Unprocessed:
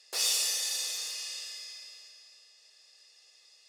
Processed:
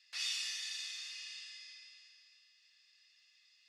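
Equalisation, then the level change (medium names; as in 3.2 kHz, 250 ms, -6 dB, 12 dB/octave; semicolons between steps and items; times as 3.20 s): ladder band-pass 2.6 kHz, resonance 25%; tilt EQ +3 dB/octave; treble shelf 3.9 kHz -11.5 dB; +6.0 dB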